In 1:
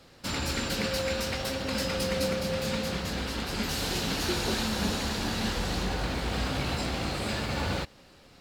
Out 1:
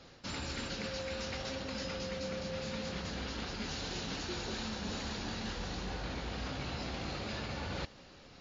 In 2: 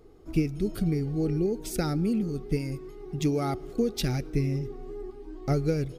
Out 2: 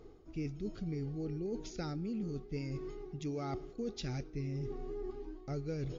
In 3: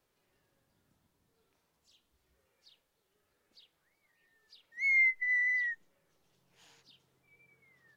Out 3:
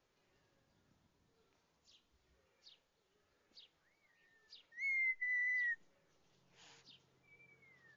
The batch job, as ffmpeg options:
ffmpeg -i in.wav -af "areverse,acompressor=threshold=-36dB:ratio=6,areverse" -ar 16000 -c:a libmp3lame -b:a 40k out.mp3

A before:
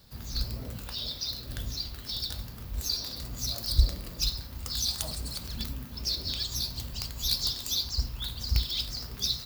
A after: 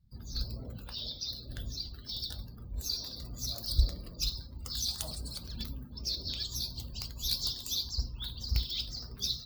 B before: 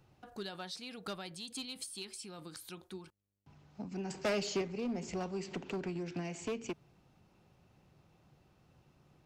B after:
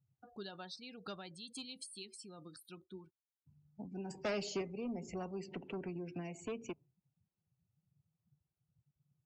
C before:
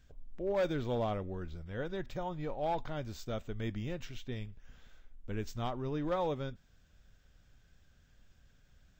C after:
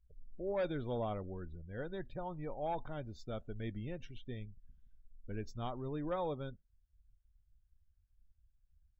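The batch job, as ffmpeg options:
ffmpeg -i in.wav -af "afftdn=noise_reduction=27:noise_floor=-49,volume=-4dB" out.wav

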